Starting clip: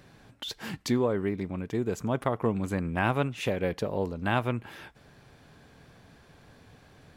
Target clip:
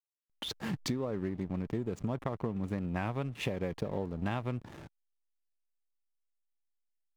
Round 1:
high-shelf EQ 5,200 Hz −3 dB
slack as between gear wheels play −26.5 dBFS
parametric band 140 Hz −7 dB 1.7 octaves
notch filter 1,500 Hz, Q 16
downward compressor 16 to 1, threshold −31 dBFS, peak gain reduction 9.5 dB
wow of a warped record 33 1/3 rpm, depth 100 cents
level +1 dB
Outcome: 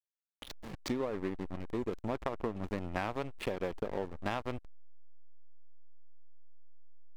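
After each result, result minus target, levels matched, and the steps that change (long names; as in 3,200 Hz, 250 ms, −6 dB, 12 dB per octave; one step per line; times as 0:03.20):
slack as between gear wheels: distortion +11 dB; 125 Hz band −6.0 dB
change: slack as between gear wheels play −37 dBFS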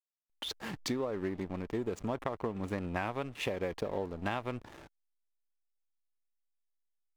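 125 Hz band −5.0 dB
change: parametric band 140 Hz +4.5 dB 1.7 octaves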